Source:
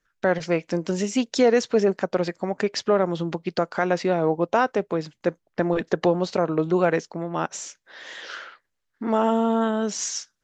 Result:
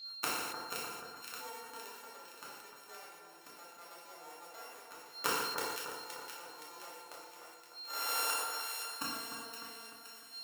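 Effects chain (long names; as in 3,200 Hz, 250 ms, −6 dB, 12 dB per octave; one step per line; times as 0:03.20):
samples sorted by size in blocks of 32 samples
high-pass filter 750 Hz 12 dB per octave
parametric band 2,700 Hz −5.5 dB 2.2 octaves
steady tone 4,200 Hz −53 dBFS
gate with flip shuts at −24 dBFS, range −36 dB
echo with a time of its own for lows and highs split 1,700 Hz, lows 301 ms, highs 519 ms, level −6.5 dB
feedback delay network reverb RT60 1.1 s, low-frequency decay 1×, high-frequency decay 0.9×, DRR −4 dB
level that may fall only so fast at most 32 dB per second
level +6 dB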